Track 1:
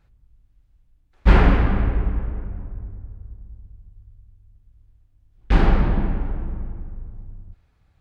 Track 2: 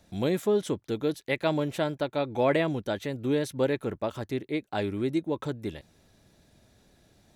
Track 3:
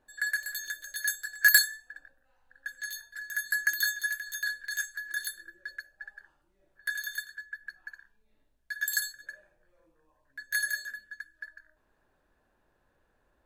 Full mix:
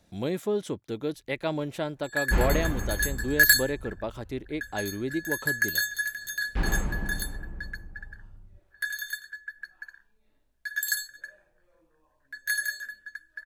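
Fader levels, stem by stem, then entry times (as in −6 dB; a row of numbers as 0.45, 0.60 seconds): −11.5, −3.0, +1.5 decibels; 1.05, 0.00, 1.95 seconds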